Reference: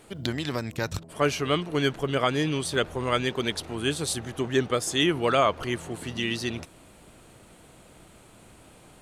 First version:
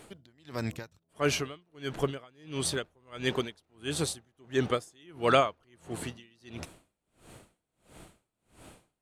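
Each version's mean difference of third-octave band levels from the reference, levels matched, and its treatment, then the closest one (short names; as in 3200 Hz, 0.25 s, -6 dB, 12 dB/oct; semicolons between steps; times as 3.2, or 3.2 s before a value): 11.5 dB: dB-linear tremolo 1.5 Hz, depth 36 dB; gain +1.5 dB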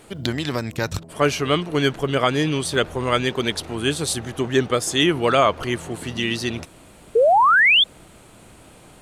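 2.5 dB: painted sound rise, 7.15–7.84, 430–3600 Hz -19 dBFS; gain +5 dB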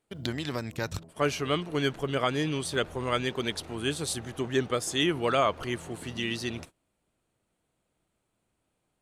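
4.5 dB: gate -42 dBFS, range -23 dB; gain -3 dB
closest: second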